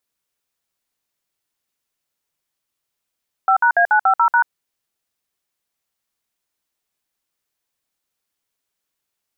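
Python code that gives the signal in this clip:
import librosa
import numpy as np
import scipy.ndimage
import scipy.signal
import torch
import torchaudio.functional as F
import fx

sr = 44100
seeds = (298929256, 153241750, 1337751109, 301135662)

y = fx.dtmf(sr, digits='5#A950#', tone_ms=86, gap_ms=57, level_db=-13.5)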